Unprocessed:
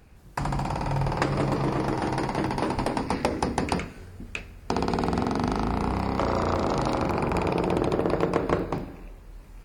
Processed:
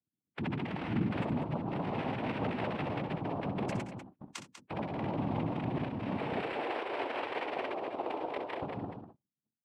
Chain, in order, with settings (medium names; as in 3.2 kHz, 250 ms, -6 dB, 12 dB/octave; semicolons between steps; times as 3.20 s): gate -37 dBFS, range -31 dB; spectral gate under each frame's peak -10 dB strong; 6.40–8.62 s: steep high-pass 510 Hz 36 dB/octave; peak limiter -25 dBFS, peak gain reduction 13 dB; noise-vocoded speech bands 4; loudspeakers at several distances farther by 22 m -10 dB, 67 m -9 dB; random flutter of the level, depth 50%